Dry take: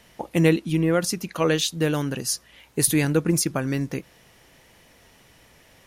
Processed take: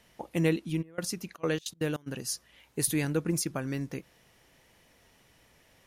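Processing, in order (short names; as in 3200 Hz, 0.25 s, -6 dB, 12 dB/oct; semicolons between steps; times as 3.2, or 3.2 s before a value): 0.81–2.06 step gate "xx.xx.x.xx...xxx" 199 bpm -24 dB; gain -8 dB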